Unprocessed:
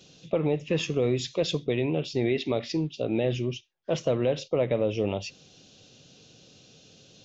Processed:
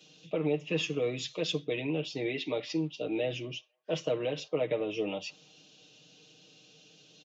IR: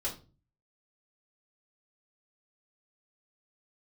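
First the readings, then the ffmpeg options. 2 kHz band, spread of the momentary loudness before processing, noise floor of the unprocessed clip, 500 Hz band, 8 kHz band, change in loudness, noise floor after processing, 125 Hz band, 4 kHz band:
−1.0 dB, 6 LU, −56 dBFS, −5.5 dB, can't be measured, −5.5 dB, −60 dBFS, −9.0 dB, −2.0 dB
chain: -filter_complex "[0:a]equalizer=frequency=2800:width=2.2:gain=5.5,aecho=1:1:6.5:0.81,acrossover=split=140|1100|1200[link_01][link_02][link_03][link_04];[link_01]acrusher=bits=3:mix=0:aa=0.5[link_05];[link_03]aecho=1:1:166|332|498|664:0.282|0.116|0.0474|0.0194[link_06];[link_05][link_02][link_06][link_04]amix=inputs=4:normalize=0,volume=-7dB"

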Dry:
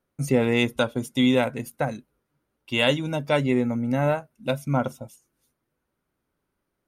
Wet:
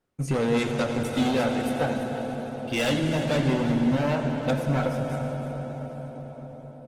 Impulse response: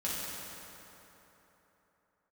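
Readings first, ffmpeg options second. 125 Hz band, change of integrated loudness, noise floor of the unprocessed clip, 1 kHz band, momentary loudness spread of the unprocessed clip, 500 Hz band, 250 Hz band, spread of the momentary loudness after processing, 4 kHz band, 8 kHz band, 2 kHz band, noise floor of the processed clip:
+1.5 dB, −2.0 dB, −80 dBFS, +0.5 dB, 9 LU, −1.0 dB, 0.0 dB, 13 LU, −4.0 dB, +1.0 dB, −2.5 dB, −43 dBFS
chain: -filter_complex "[0:a]highshelf=frequency=7100:gain=-5.5,asoftclip=type=hard:threshold=-22.5dB,aecho=1:1:340:0.237,asplit=2[link_01][link_02];[1:a]atrim=start_sample=2205,asetrate=22491,aresample=44100[link_03];[link_02][link_03]afir=irnorm=-1:irlink=0,volume=-10.5dB[link_04];[link_01][link_04]amix=inputs=2:normalize=0,volume=-2dB" -ar 48000 -c:a libopus -b:a 16k

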